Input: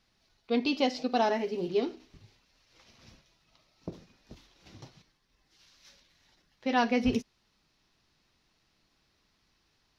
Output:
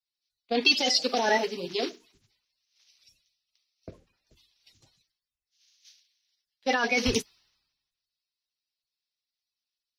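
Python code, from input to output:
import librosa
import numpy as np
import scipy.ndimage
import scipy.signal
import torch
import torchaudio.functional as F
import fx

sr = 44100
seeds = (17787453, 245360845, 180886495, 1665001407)

y = fx.spec_quant(x, sr, step_db=30)
y = fx.low_shelf(y, sr, hz=330.0, db=-10.0)
y = fx.over_compress(y, sr, threshold_db=-31.0, ratio=-1.0)
y = fx.high_shelf(y, sr, hz=2000.0, db=9.0)
y = fx.band_widen(y, sr, depth_pct=100)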